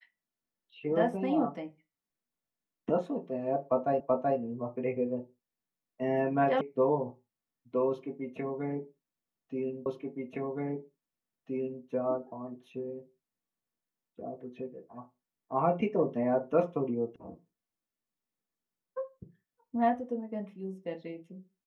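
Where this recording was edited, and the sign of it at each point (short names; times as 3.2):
4 repeat of the last 0.38 s
6.61 sound cut off
9.86 repeat of the last 1.97 s
17.16 sound cut off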